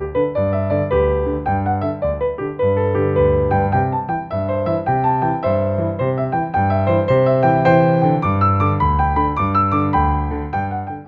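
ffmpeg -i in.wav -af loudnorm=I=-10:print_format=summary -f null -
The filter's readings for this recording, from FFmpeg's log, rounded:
Input Integrated:    -17.7 LUFS
Input True Peak:      -1.3 dBTP
Input LRA:             3.3 LU
Input Threshold:     -27.7 LUFS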